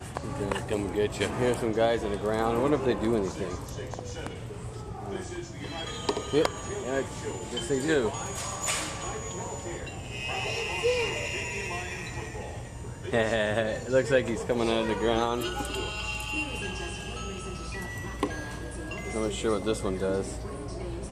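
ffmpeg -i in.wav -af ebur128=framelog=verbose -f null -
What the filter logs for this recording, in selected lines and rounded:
Integrated loudness:
  I:         -30.2 LUFS
  Threshold: -40.2 LUFS
Loudness range:
  LRA:         5.7 LU
  Threshold: -50.3 LUFS
  LRA low:   -33.3 LUFS
  LRA high:  -27.7 LUFS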